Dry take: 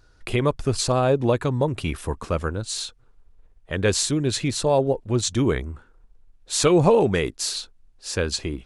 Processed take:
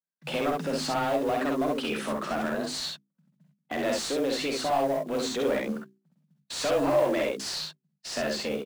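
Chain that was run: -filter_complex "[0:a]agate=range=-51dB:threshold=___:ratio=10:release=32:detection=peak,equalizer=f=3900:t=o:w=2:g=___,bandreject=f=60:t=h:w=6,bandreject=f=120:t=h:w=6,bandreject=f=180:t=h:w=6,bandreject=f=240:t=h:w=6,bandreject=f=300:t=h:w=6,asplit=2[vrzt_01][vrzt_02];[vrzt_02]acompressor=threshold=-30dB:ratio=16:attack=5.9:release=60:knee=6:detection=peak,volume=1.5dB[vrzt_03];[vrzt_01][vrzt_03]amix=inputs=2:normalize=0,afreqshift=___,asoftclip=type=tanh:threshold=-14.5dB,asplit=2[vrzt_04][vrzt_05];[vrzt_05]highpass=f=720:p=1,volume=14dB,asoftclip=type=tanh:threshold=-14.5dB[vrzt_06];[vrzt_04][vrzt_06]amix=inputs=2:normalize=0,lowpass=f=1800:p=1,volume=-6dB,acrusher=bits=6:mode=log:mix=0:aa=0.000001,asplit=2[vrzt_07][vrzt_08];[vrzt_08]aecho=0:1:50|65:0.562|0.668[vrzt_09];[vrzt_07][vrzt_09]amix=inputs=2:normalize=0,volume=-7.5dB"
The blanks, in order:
-45dB, 3.5, 140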